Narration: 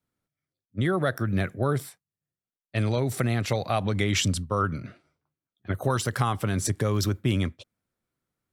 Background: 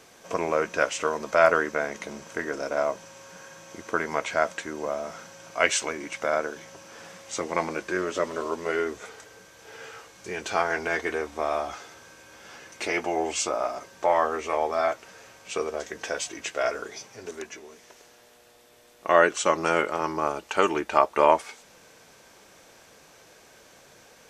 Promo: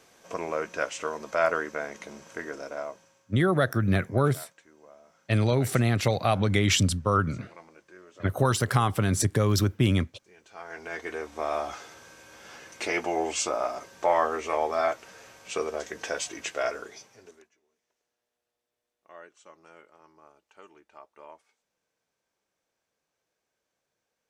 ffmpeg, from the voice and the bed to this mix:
ffmpeg -i stem1.wav -i stem2.wav -filter_complex "[0:a]adelay=2550,volume=2dB[link_01];[1:a]volume=16.5dB,afade=type=out:start_time=2.47:duration=0.8:silence=0.133352,afade=type=in:start_time=10.53:duration=1.15:silence=0.0794328,afade=type=out:start_time=16.47:duration=1.02:silence=0.0375837[link_02];[link_01][link_02]amix=inputs=2:normalize=0" out.wav

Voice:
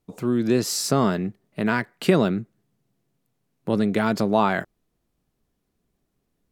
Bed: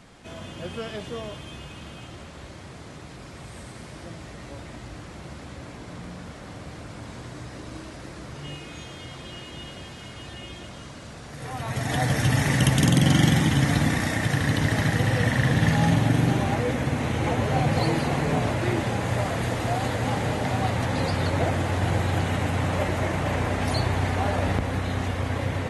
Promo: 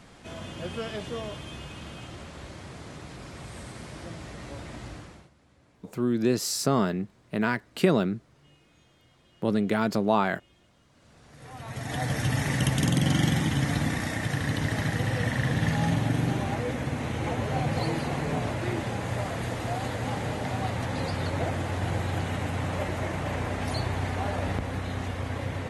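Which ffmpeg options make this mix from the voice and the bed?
ffmpeg -i stem1.wav -i stem2.wav -filter_complex "[0:a]adelay=5750,volume=-3.5dB[link_01];[1:a]volume=16.5dB,afade=type=out:start_time=4.88:duration=0.42:silence=0.0841395,afade=type=in:start_time=10.88:duration=1.26:silence=0.141254[link_02];[link_01][link_02]amix=inputs=2:normalize=0" out.wav

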